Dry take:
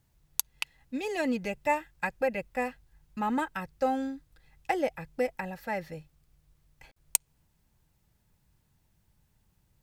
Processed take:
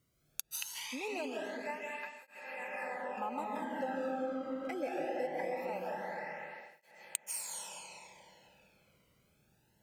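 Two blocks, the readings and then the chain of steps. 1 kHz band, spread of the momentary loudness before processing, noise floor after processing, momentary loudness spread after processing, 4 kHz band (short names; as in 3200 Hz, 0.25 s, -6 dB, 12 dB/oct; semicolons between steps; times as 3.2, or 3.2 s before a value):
-6.0 dB, 8 LU, -73 dBFS, 11 LU, -3.5 dB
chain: digital reverb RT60 3.9 s, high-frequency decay 0.7×, pre-delay 0.115 s, DRR -5 dB; compressor 4:1, threshold -34 dBFS, peak gain reduction 13.5 dB; tape flanging out of phase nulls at 0.22 Hz, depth 1.2 ms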